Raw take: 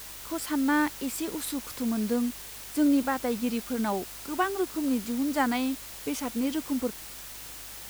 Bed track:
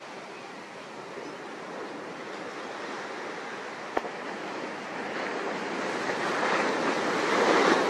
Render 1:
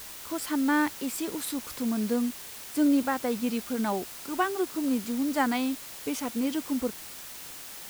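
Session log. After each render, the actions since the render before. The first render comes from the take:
hum removal 50 Hz, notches 3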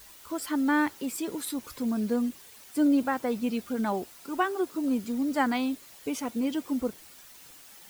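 broadband denoise 10 dB, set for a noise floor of −43 dBFS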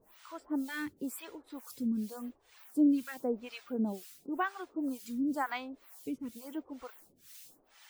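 two-band tremolo in antiphase 2.1 Hz, depth 100%, crossover 740 Hz
phaser with staggered stages 0.93 Hz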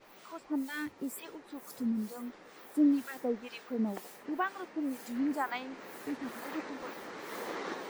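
mix in bed track −17 dB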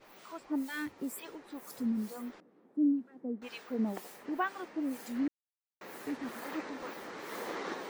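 0:02.40–0:03.42: resonant band-pass 230 Hz, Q 1.8
0:05.28–0:05.81: silence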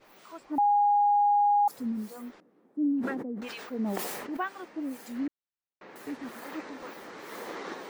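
0:00.58–0:01.68: beep over 821 Hz −19.5 dBFS
0:02.81–0:04.37: level that may fall only so fast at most 29 dB per second
0:05.27–0:05.96: high-frequency loss of the air 170 metres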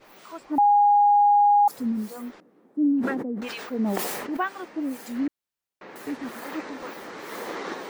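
level +5.5 dB

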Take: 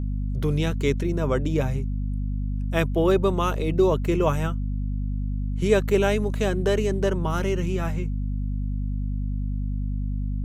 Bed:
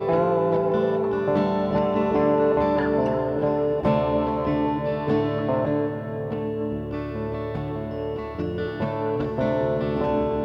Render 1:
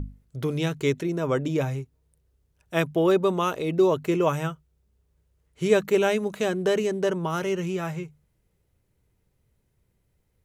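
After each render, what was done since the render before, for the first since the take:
mains-hum notches 50/100/150/200/250 Hz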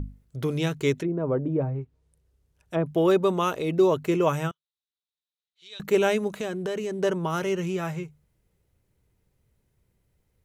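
0:00.99–0:02.86: treble cut that deepens with the level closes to 790 Hz, closed at −23.5 dBFS
0:04.51–0:05.80: resonant band-pass 3,800 Hz, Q 7.1
0:06.34–0:06.99: downward compressor 3 to 1, threshold −28 dBFS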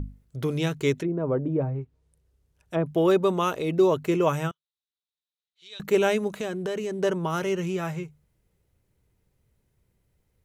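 no processing that can be heard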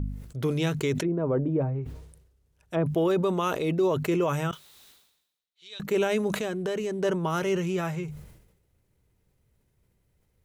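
brickwall limiter −17 dBFS, peak gain reduction 7 dB
level that may fall only so fast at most 66 dB per second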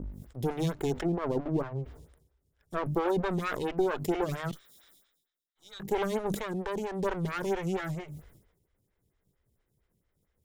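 lower of the sound and its delayed copy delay 0.57 ms
phaser with staggered stages 4.4 Hz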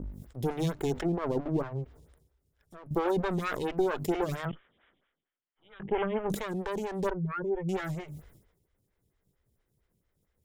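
0:01.84–0:02.91: downward compressor 2.5 to 1, threshold −54 dBFS
0:04.45–0:06.30: Butterworth low-pass 3,200 Hz 96 dB per octave
0:07.10–0:07.69: expanding power law on the bin magnitudes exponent 2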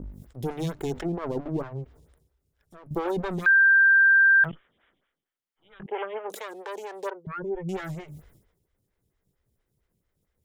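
0:03.46–0:04.44: beep over 1,580 Hz −14 dBFS
0:05.86–0:07.27: high-pass filter 410 Hz 24 dB per octave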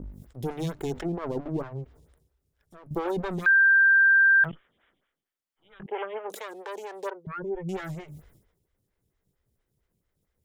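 level −1 dB

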